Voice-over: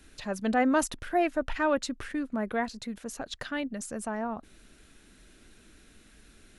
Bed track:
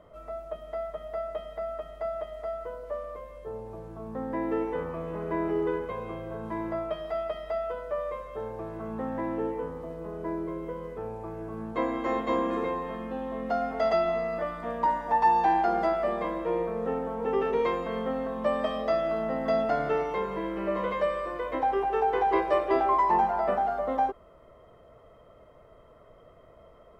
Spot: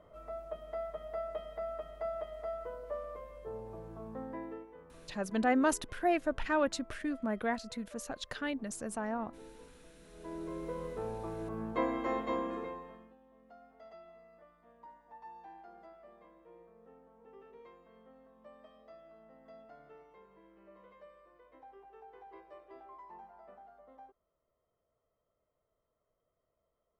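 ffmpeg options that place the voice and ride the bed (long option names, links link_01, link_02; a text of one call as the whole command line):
ffmpeg -i stem1.wav -i stem2.wav -filter_complex "[0:a]adelay=4900,volume=-3.5dB[link_01];[1:a]volume=15dB,afade=type=out:start_time=3.95:duration=0.71:silence=0.133352,afade=type=in:start_time=10.1:duration=0.71:silence=0.1,afade=type=out:start_time=11.63:duration=1.53:silence=0.0473151[link_02];[link_01][link_02]amix=inputs=2:normalize=0" out.wav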